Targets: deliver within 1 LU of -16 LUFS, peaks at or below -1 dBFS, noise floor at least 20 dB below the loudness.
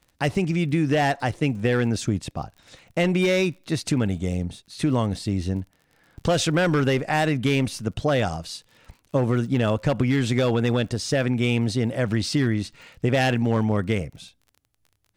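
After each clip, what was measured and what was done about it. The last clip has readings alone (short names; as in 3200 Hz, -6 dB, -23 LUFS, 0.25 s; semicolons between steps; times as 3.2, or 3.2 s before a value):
ticks 36/s; loudness -23.5 LUFS; peak -11.5 dBFS; loudness target -16.0 LUFS
-> de-click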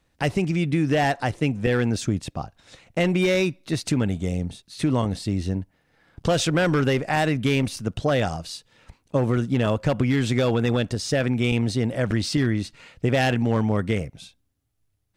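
ticks 0/s; loudness -23.5 LUFS; peak -11.5 dBFS; loudness target -16.0 LUFS
-> gain +7.5 dB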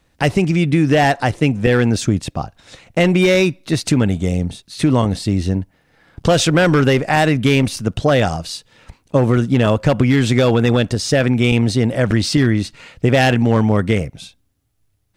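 loudness -16.0 LUFS; peak -4.0 dBFS; noise floor -62 dBFS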